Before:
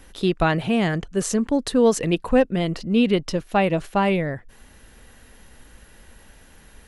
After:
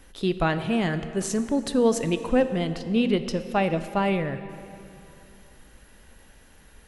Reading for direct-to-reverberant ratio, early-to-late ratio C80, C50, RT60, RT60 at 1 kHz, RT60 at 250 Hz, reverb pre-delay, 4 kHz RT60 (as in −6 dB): 10.5 dB, 12.0 dB, 11.5 dB, 2.9 s, 2.9 s, 2.9 s, 6 ms, 2.1 s